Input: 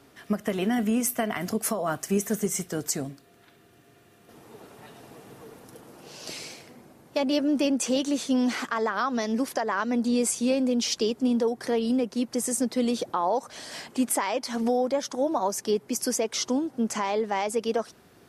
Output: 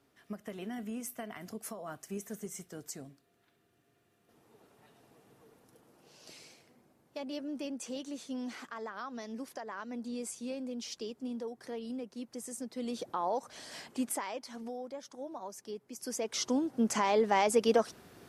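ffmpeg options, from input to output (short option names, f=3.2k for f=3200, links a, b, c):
-af "volume=10dB,afade=t=in:st=12.72:d=0.48:silence=0.421697,afade=t=out:st=13.87:d=0.77:silence=0.334965,afade=t=in:st=15.97:d=0.38:silence=0.281838,afade=t=in:st=16.35:d=1.05:silence=0.473151"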